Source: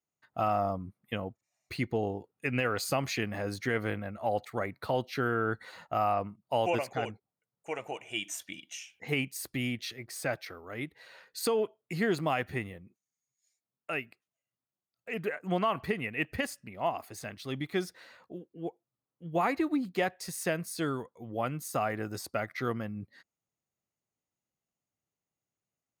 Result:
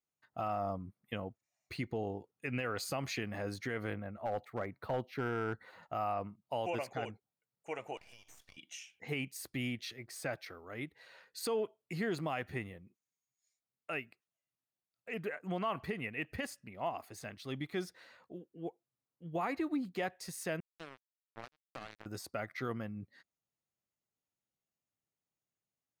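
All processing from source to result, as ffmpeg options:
-filter_complex "[0:a]asettb=1/sr,asplit=3[a][b][c];[a]atrim=end=3.934[d];[b]atrim=start=3.93:end=5.83,asetpts=PTS-STARTPTS,afade=t=in:d=0.004:c=qsin,afade=t=out:st=1.896:d=0.004:c=qsin,equalizer=f=6.5k:w=0.46:g=-11,aeval=exprs='clip(val(0),-1,0.0596)':c=same[e];[c]atrim=start=5.826[f];[d][e]acrossfade=d=0.004:c1=hsin:c2=qsin[g];[g][f]acrossfade=d=0.004:c1=qsin:c2=hsin,asettb=1/sr,asplit=3[h][i][j];[h]atrim=end=7.974[k];[i]atrim=start=7.97:end=8.57,asetpts=PTS-STARTPTS,afade=t=in:d=0.004:c=qsin,afade=t=out:st=0.596:d=0.004:c=qsin,highpass=f=570:w=0.5412,highpass=f=570:w=1.3066,acompressor=threshold=-45dB:ratio=12:attack=3.2:release=140:knee=1:detection=peak,aeval=exprs='max(val(0),0)':c=same[l];[j]atrim=start=8.566[m];[k][l]acrossfade=d=0.004:c1=hsin:c2=qsin[n];[n][m]acrossfade=d=0.004:c1=qsin:c2=hsin,asettb=1/sr,asplit=3[o][p][q];[o]atrim=end=20.604[r];[p]atrim=start=20.6:end=22.06,asetpts=PTS-STARTPTS,afade=t=in:d=0.004:c=qsin,afade=t=out:st=1.456:d=0.004:c=qsin,highshelf=f=8.7k:g=-5.5,acrusher=bits=3:mix=0:aa=0.5,acompressor=threshold=-44dB:ratio=2:attack=3.2:release=140:knee=1:detection=peak[s];[q]atrim=start=22.056[t];[r][s]acrossfade=d=0.004:c1=hsin:c2=qsin[u];[u][t]acrossfade=d=0.004:c1=qsin:c2=hsin,highshelf=f=8.3k:g=-3.5,alimiter=limit=-22dB:level=0:latency=1:release=53,volume=-4.5dB"

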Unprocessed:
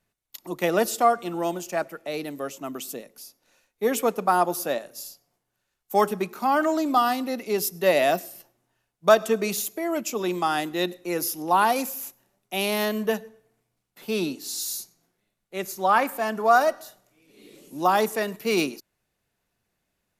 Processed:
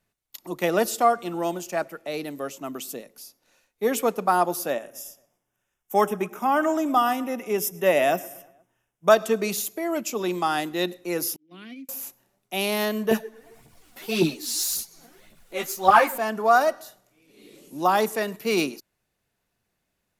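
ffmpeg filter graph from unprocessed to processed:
-filter_complex "[0:a]asettb=1/sr,asplit=3[a][b][c];[a]atrim=end=4.704[d];[b]atrim=start=4.7:end=9.12,asetpts=PTS-STARTPTS,afade=t=in:d=0.004:c=qsin,afade=t=out:st=4.416:d=0.004:c=qsin,asuperstop=centerf=4300:order=4:qfactor=2.6,asplit=2[e][f];[f]adelay=118,lowpass=f=3.6k:p=1,volume=-21dB,asplit=2[g][h];[h]adelay=118,lowpass=f=3.6k:p=1,volume=0.53,asplit=2[i][j];[j]adelay=118,lowpass=f=3.6k:p=1,volume=0.53,asplit=2[k][l];[l]adelay=118,lowpass=f=3.6k:p=1,volume=0.53[m];[e][g][i][k][m]amix=inputs=5:normalize=0,atrim=end_sample=194922[n];[c]atrim=start=9.116[o];[d][n]acrossfade=d=0.004:c1=hsin:c2=qsin[p];[p][o]acrossfade=d=0.004:c1=qsin:c2=hsin,asettb=1/sr,asplit=3[q][r][s];[q]atrim=end=11.364[t];[r]atrim=start=11.36:end=11.89,asetpts=PTS-STARTPTS,afade=t=in:d=0.004:c=qsin,afade=t=out:st=0.526:d=0.004:c=qsin,agate=range=-33dB:threshold=-19dB:ratio=3:release=100:detection=peak,asplit=3[u][v][w];[u]bandpass=f=270:t=q:w=8,volume=0dB[x];[v]bandpass=f=2.29k:t=q:w=8,volume=-6dB[y];[w]bandpass=f=3.01k:t=q:w=8,volume=-9dB[z];[x][y][z]amix=inputs=3:normalize=0,equalizer=f=170:w=2.5:g=7.5[aa];[s]atrim=start=11.886[ab];[t][aa]acrossfade=d=0.004:c1=hsin:c2=qsin[ac];[ac][ab]acrossfade=d=0.004:c1=qsin:c2=hsin,asettb=1/sr,asplit=3[ad][ae][af];[ad]atrim=end=13.114[ag];[ae]atrim=start=13.11:end=16.18,asetpts=PTS-STARTPTS,afade=t=in:d=0.004:c=qsin,afade=t=out:st=3.066:d=0.004:c=qsin,aphaser=in_gain=1:out_gain=1:delay=4.3:decay=0.69:speed=1.8:type=triangular,acompressor=mode=upward:threshold=-38dB:ratio=2.5:attack=3.2:release=140:knee=2.83:detection=peak,asplit=2[ah][ai];[ai]adelay=13,volume=-4dB[aj];[ah][aj]amix=inputs=2:normalize=0,atrim=end_sample=135387[ak];[af]atrim=start=16.176[al];[ag][ak]acrossfade=d=0.004:c1=hsin:c2=qsin[am];[am][al]acrossfade=d=0.004:c1=qsin:c2=hsin"

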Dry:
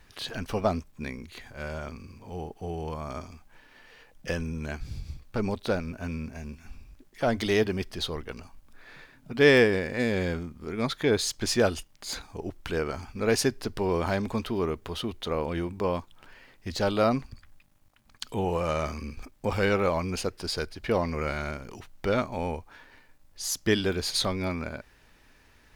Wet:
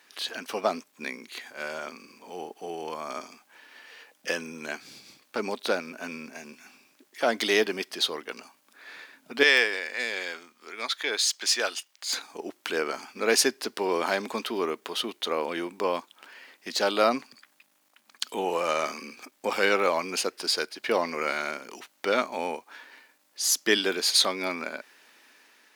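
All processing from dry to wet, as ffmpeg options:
-filter_complex "[0:a]asettb=1/sr,asplit=3[a][b][c];[a]atrim=end=9.434[d];[b]atrim=start=9.43:end=12.13,asetpts=PTS-STARTPTS,afade=t=in:d=0.004:c=qsin,afade=t=out:st=2.696:d=0.004:c=qsin,highpass=f=1.4k:p=1,equalizer=f=12k:t=o:w=0.84:g=-6[e];[c]atrim=start=12.126[f];[d][e]acrossfade=d=0.004:c1=hsin:c2=qsin[g];[g][f]acrossfade=d=0.004:c1=qsin:c2=hsin,dynaudnorm=f=270:g=5:m=3dB,highpass=f=250:w=0.5412,highpass=f=250:w=1.3066,tiltshelf=f=970:g=-4"

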